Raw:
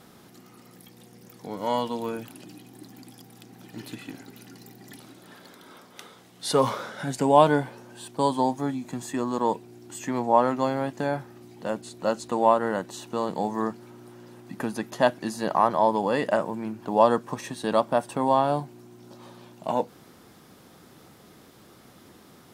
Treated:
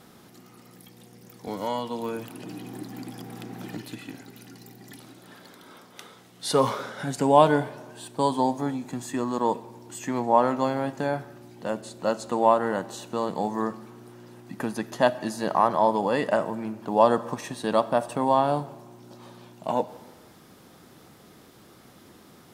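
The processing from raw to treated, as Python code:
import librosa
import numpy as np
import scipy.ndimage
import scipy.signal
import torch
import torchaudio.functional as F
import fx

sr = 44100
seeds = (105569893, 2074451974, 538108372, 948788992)

y = fx.rev_freeverb(x, sr, rt60_s=1.2, hf_ratio=0.8, predelay_ms=5, drr_db=16.0)
y = fx.band_squash(y, sr, depth_pct=70, at=(1.47, 3.77))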